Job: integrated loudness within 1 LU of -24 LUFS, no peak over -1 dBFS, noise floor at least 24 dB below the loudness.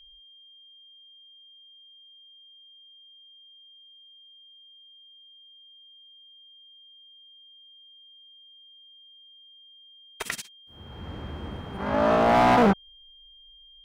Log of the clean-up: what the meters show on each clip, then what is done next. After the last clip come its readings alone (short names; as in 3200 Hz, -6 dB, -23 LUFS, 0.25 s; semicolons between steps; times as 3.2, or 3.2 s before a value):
clipped 0.5%; flat tops at -14.5 dBFS; steady tone 3200 Hz; tone level -50 dBFS; loudness -24.0 LUFS; peak -14.5 dBFS; loudness target -24.0 LUFS
-> clip repair -14.5 dBFS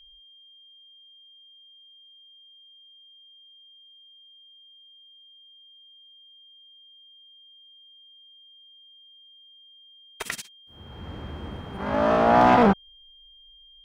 clipped 0.0%; steady tone 3200 Hz; tone level -50 dBFS
-> notch 3200 Hz, Q 30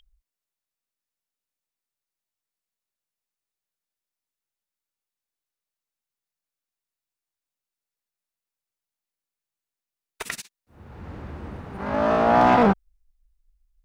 steady tone none; loudness -19.5 LUFS; peak -5.5 dBFS; loudness target -24.0 LUFS
-> gain -4.5 dB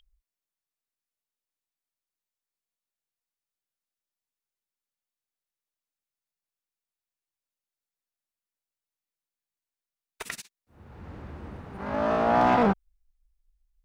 loudness -24.0 LUFS; peak -10.0 dBFS; noise floor -92 dBFS